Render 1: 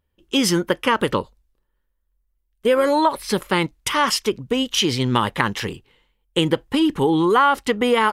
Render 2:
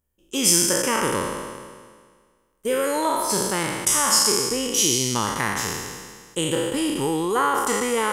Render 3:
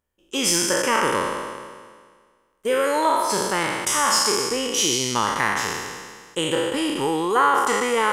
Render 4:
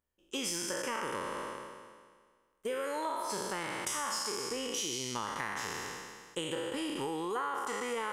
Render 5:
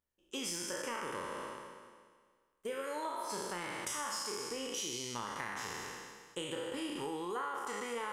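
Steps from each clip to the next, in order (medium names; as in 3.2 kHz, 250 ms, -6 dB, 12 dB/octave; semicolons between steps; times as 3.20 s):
spectral sustain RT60 1.74 s; resonant high shelf 5.2 kHz +11 dB, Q 1.5; trim -8 dB
overdrive pedal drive 10 dB, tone 2.7 kHz, clips at -1 dBFS
compression 5:1, threshold -25 dBFS, peak gain reduction 10.5 dB; trim -8 dB
flutter echo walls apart 5.8 m, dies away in 0.21 s; trim -4 dB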